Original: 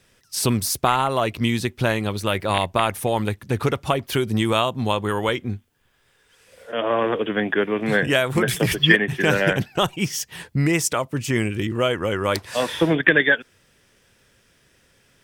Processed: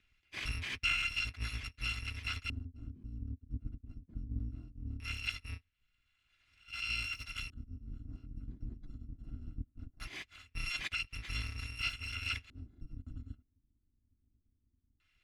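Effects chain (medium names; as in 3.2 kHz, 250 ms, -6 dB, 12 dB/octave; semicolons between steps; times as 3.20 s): bit-reversed sample order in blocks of 256 samples; amplifier tone stack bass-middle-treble 6-0-2; compressor with a negative ratio -27 dBFS; LFO low-pass square 0.2 Hz 270–2400 Hz; trim +6.5 dB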